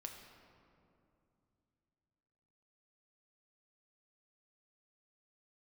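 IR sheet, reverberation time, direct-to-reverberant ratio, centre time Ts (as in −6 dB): 2.7 s, 2.5 dB, 54 ms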